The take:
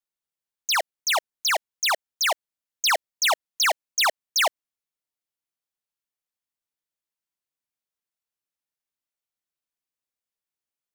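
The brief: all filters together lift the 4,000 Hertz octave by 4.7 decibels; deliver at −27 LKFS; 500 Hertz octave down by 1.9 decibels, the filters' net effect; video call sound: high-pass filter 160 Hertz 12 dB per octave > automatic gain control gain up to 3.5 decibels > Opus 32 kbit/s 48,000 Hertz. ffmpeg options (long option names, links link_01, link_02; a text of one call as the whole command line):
ffmpeg -i in.wav -af "highpass=160,equalizer=frequency=500:width_type=o:gain=-3,equalizer=frequency=4000:width_type=o:gain=6,dynaudnorm=maxgain=3.5dB,volume=-6dB" -ar 48000 -c:a libopus -b:a 32k out.opus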